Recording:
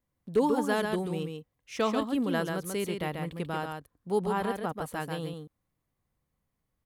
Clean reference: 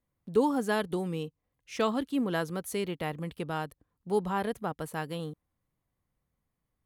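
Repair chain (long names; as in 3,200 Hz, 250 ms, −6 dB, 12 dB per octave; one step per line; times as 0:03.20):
clipped peaks rebuilt −16 dBFS
echo removal 138 ms −5 dB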